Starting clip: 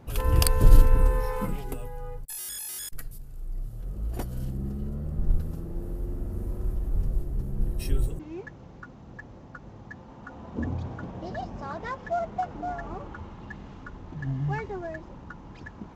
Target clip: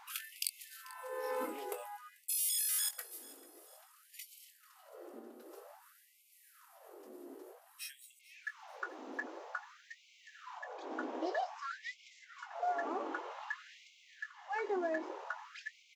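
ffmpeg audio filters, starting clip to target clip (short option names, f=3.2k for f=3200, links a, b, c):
-filter_complex "[0:a]acompressor=threshold=-39dB:ratio=2.5,asplit=2[a][b];[b]adelay=22,volume=-9dB[c];[a][c]amix=inputs=2:normalize=0,aecho=1:1:440|880|1320:0.0944|0.0378|0.0151,afftfilt=real='re*gte(b*sr/1024,230*pow(2100/230,0.5+0.5*sin(2*PI*0.52*pts/sr)))':imag='im*gte(b*sr/1024,230*pow(2100/230,0.5+0.5*sin(2*PI*0.52*pts/sr)))':win_size=1024:overlap=0.75,volume=5dB"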